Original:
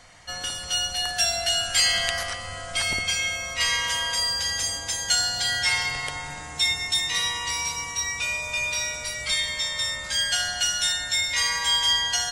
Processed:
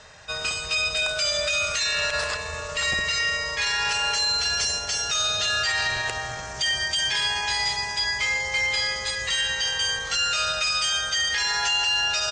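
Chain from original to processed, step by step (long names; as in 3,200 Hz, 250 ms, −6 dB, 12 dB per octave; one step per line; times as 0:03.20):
in parallel at −6 dB: hard clipping −23.5 dBFS, distortion −10 dB
on the sum: high-pass filter 51 Hz 6 dB per octave
parametric band 300 Hz −8.5 dB 0.28 octaves
brickwall limiter −16 dBFS, peak gain reduction 10 dB
pitch shifter −2.5 semitones
Butterworth low-pass 8,600 Hz 36 dB per octave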